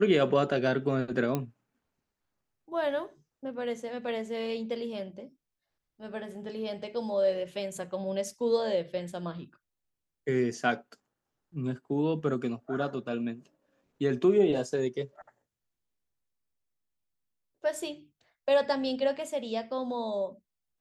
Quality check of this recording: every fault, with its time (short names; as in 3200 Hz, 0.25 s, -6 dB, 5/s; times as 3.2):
1.35 pop -16 dBFS